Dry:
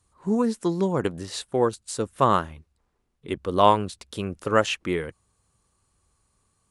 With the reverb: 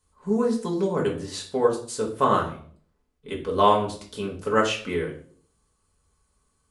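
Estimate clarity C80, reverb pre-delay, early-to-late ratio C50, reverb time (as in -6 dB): 13.0 dB, 4 ms, 9.0 dB, 0.50 s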